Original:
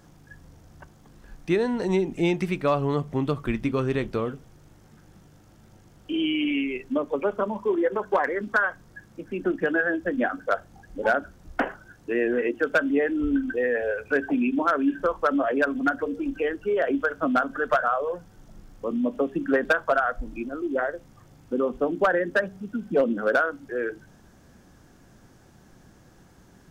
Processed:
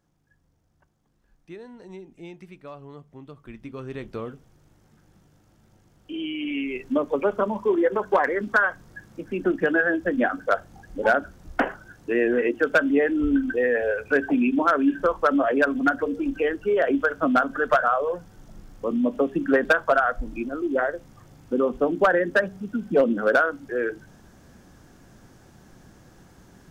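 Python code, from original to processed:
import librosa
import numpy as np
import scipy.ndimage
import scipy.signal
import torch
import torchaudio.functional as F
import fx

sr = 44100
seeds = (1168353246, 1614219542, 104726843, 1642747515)

y = fx.gain(x, sr, db=fx.line((3.29, -18.0), (4.2, -5.5), (6.37, -5.5), (6.9, 2.5)))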